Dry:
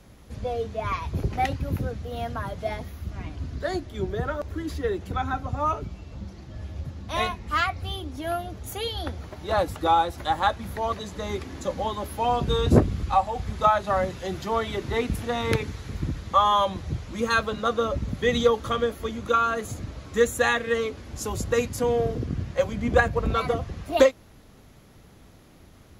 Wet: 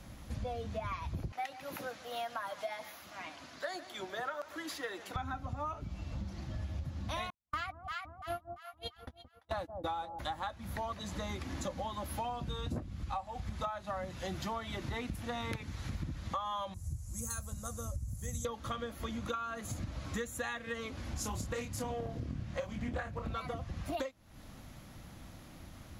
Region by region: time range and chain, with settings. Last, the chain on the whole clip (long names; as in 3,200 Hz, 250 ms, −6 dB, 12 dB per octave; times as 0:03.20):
0:01.32–0:05.16: high-pass filter 600 Hz + single-tap delay 143 ms −19 dB
0:07.30–0:10.19: noise gate −27 dBFS, range −59 dB + delay that swaps between a low-pass and a high-pass 171 ms, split 800 Hz, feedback 61%, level −11 dB
0:16.74–0:18.45: drawn EQ curve 100 Hz 0 dB, 260 Hz −17 dB, 710 Hz −18 dB, 3,500 Hz −25 dB, 7,800 Hz +13 dB + highs frequency-modulated by the lows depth 0.13 ms
0:21.11–0:23.29: double-tracking delay 28 ms −4 dB + highs frequency-modulated by the lows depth 0.26 ms
whole clip: parametric band 420 Hz −13 dB 0.3 octaves; downward compressor 12 to 1, threshold −36 dBFS; level +1 dB